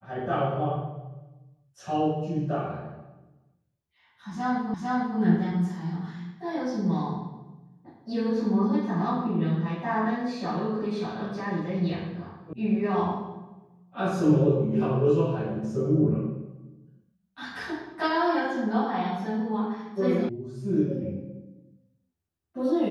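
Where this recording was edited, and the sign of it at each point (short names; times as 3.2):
4.74 repeat of the last 0.45 s
12.53 sound cut off
20.29 sound cut off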